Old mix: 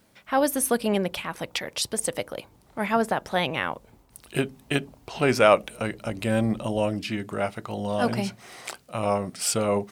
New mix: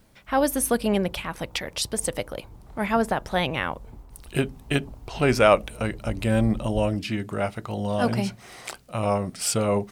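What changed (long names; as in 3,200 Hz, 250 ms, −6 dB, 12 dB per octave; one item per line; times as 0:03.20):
background +6.0 dB
master: remove high-pass filter 160 Hz 6 dB per octave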